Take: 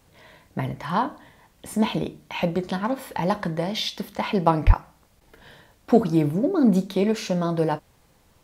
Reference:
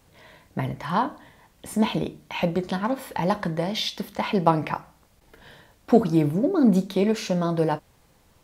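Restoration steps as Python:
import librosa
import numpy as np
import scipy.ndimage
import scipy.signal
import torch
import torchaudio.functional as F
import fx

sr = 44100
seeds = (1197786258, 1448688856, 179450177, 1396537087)

y = fx.highpass(x, sr, hz=140.0, slope=24, at=(4.66, 4.78), fade=0.02)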